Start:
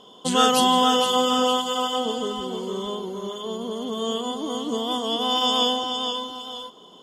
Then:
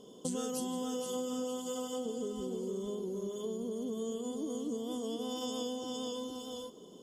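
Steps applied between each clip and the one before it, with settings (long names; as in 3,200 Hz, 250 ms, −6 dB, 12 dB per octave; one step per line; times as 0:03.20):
flat-topped bell 1,700 Hz −14.5 dB 2.9 octaves
downward compressor 5 to 1, threshold −35 dBFS, peak gain reduction 14.5 dB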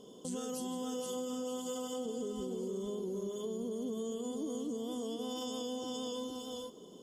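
brickwall limiter −30 dBFS, peak gain reduction 7 dB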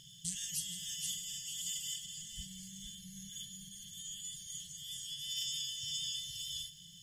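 linear-phase brick-wall band-stop 170–1,600 Hz
convolution reverb RT60 3.3 s, pre-delay 90 ms, DRR 16 dB
level +8 dB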